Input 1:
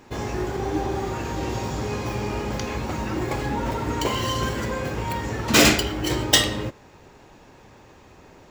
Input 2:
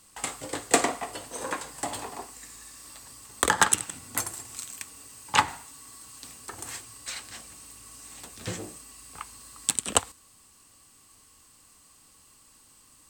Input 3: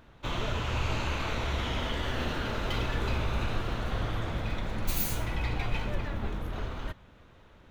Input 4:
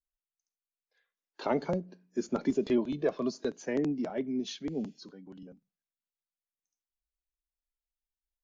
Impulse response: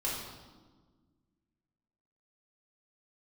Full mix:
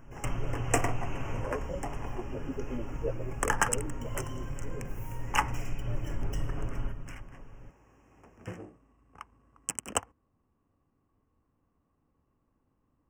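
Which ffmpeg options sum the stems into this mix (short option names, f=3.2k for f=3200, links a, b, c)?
-filter_complex "[0:a]acompressor=threshold=-28dB:ratio=10,volume=-15dB,asplit=2[a][b];[b]volume=-16dB[c];[1:a]adynamicsmooth=sensitivity=7:basefreq=670,volume=-5.5dB[d];[2:a]aecho=1:1:7.2:0.65,acompressor=threshold=-33dB:ratio=6,lowshelf=f=340:g=11.5,volume=-7dB,asplit=2[e][f];[f]volume=-11.5dB[g];[3:a]lowpass=f=520:t=q:w=4.9,asplit=2[h][i];[i]adelay=10.7,afreqshift=-0.96[j];[h][j]amix=inputs=2:normalize=1,volume=-12.5dB,asplit=2[k][l];[l]apad=whole_len=339890[m];[e][m]sidechaincompress=threshold=-60dB:ratio=8:attack=16:release=555[n];[4:a]atrim=start_sample=2205[o];[g][o]afir=irnorm=-1:irlink=0[p];[c]aecho=0:1:418:1[q];[a][d][n][k][p][q]amix=inputs=6:normalize=0,asuperstop=centerf=4000:order=12:qfactor=1.9"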